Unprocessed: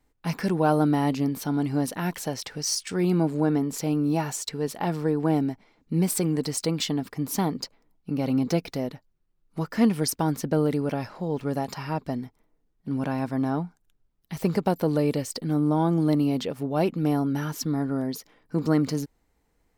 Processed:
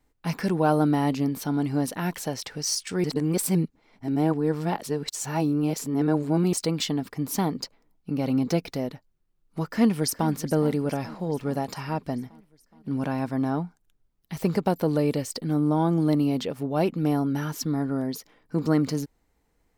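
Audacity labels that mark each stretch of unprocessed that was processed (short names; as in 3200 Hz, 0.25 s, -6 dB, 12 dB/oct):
3.040000	6.530000	reverse
9.680000	10.300000	echo throw 0.42 s, feedback 65%, level -15.5 dB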